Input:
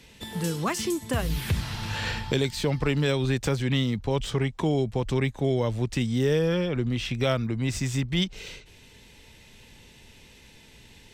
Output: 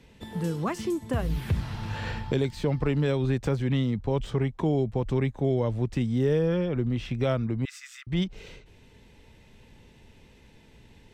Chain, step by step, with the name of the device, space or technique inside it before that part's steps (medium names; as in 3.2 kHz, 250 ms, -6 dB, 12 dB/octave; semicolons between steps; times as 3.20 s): 7.65–8.07 s: steep high-pass 1.2 kHz 96 dB/octave; through cloth (treble shelf 2 kHz -12.5 dB)